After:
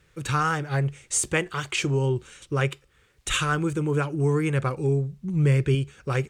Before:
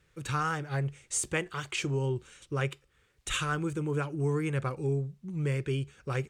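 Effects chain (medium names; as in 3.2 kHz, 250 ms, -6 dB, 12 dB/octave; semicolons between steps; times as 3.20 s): 5.12–5.75 s: bass shelf 140 Hz +8.5 dB; trim +6.5 dB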